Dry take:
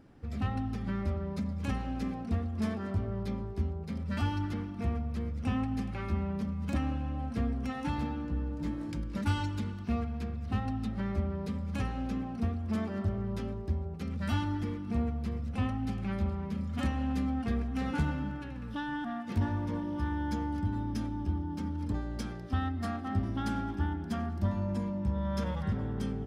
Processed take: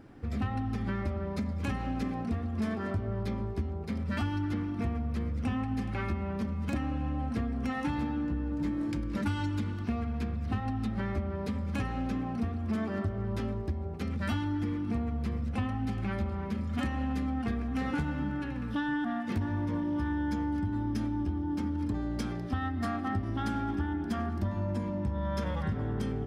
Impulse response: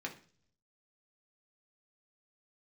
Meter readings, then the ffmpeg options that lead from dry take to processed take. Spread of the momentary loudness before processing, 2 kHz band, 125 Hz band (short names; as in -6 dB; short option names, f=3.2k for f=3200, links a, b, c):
4 LU, +3.0 dB, 0.0 dB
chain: -filter_complex "[0:a]acontrast=38,asplit=2[a][b];[1:a]atrim=start_sample=2205,lowpass=4.8k[c];[b][c]afir=irnorm=-1:irlink=0,volume=-7dB[d];[a][d]amix=inputs=2:normalize=0,acompressor=threshold=-26dB:ratio=6,volume=-2dB"